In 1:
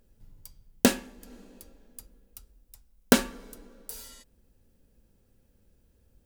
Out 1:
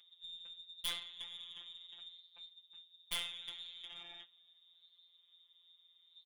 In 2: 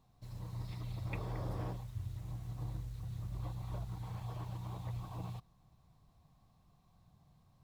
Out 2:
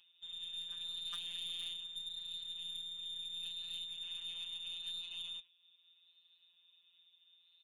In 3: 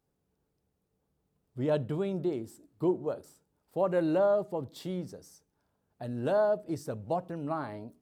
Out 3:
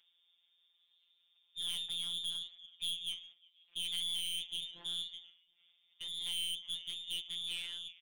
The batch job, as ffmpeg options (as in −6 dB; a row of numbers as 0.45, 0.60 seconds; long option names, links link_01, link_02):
-filter_complex "[0:a]lowpass=frequency=3100:width_type=q:width=0.5098,lowpass=frequency=3100:width_type=q:width=0.6013,lowpass=frequency=3100:width_type=q:width=0.9,lowpass=frequency=3100:width_type=q:width=2.563,afreqshift=-3700,asplit=2[link_01][link_02];[link_02]acompressor=threshold=-43dB:ratio=4,volume=-2.5dB[link_03];[link_01][link_03]amix=inputs=2:normalize=0,aeval=exprs='val(0)*sin(2*PI*53*n/s)':channel_layout=same,acompressor=mode=upward:threshold=-50dB:ratio=2.5,asplit=2[link_04][link_05];[link_05]asplit=3[link_06][link_07][link_08];[link_06]adelay=359,afreqshift=-55,volume=-23.5dB[link_09];[link_07]adelay=718,afreqshift=-110,volume=-29.5dB[link_10];[link_08]adelay=1077,afreqshift=-165,volume=-35.5dB[link_11];[link_09][link_10][link_11]amix=inputs=3:normalize=0[link_12];[link_04][link_12]amix=inputs=2:normalize=0,agate=range=-8dB:threshold=-53dB:ratio=16:detection=peak,flanger=delay=1.5:depth=5.8:regen=-84:speed=0.76:shape=sinusoidal,aeval=exprs='(tanh(79.4*val(0)+0.15)-tanh(0.15))/79.4':channel_layout=same,afftfilt=real='hypot(re,im)*cos(PI*b)':imag='0':win_size=1024:overlap=0.75,equalizer=frequency=1200:width=0.33:gain=-4,volume=9dB"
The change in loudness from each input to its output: −17.5, +2.0, −6.0 LU